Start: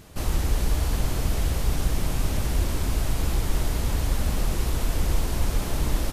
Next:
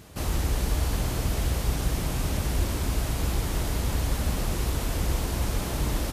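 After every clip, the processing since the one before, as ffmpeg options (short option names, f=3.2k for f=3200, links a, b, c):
-af "highpass=42"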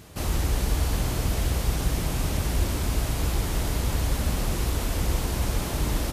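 -af "bandreject=f=67.42:t=h:w=4,bandreject=f=134.84:t=h:w=4,bandreject=f=202.26:t=h:w=4,bandreject=f=269.68:t=h:w=4,bandreject=f=337.1:t=h:w=4,bandreject=f=404.52:t=h:w=4,bandreject=f=471.94:t=h:w=4,bandreject=f=539.36:t=h:w=4,bandreject=f=606.78:t=h:w=4,bandreject=f=674.2:t=h:w=4,bandreject=f=741.62:t=h:w=4,bandreject=f=809.04:t=h:w=4,bandreject=f=876.46:t=h:w=4,bandreject=f=943.88:t=h:w=4,bandreject=f=1.0113k:t=h:w=4,bandreject=f=1.07872k:t=h:w=4,bandreject=f=1.14614k:t=h:w=4,bandreject=f=1.21356k:t=h:w=4,bandreject=f=1.28098k:t=h:w=4,bandreject=f=1.3484k:t=h:w=4,bandreject=f=1.41582k:t=h:w=4,bandreject=f=1.48324k:t=h:w=4,bandreject=f=1.55066k:t=h:w=4,bandreject=f=1.61808k:t=h:w=4,bandreject=f=1.6855k:t=h:w=4,bandreject=f=1.75292k:t=h:w=4,bandreject=f=1.82034k:t=h:w=4,bandreject=f=1.88776k:t=h:w=4,volume=1.5dB"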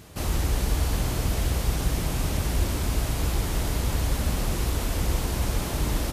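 -af anull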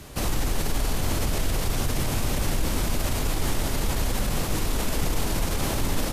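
-af "alimiter=limit=-21dB:level=0:latency=1:release=24,afreqshift=-32,volume=5dB"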